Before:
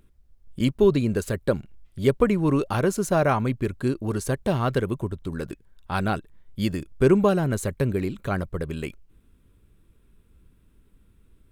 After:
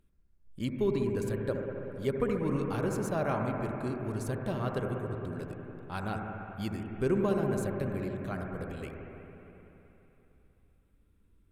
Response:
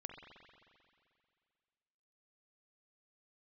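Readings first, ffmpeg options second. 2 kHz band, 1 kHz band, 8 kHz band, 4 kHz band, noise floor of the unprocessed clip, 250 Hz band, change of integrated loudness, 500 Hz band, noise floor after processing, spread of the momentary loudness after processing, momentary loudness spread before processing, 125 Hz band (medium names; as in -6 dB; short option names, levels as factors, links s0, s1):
-9.0 dB, -8.5 dB, -11.0 dB, -11.0 dB, -60 dBFS, -8.5 dB, -9.0 dB, -8.5 dB, -66 dBFS, 11 LU, 12 LU, -8.5 dB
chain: -filter_complex "[1:a]atrim=start_sample=2205,asetrate=29988,aresample=44100[s0];[0:a][s0]afir=irnorm=-1:irlink=0,volume=0.422"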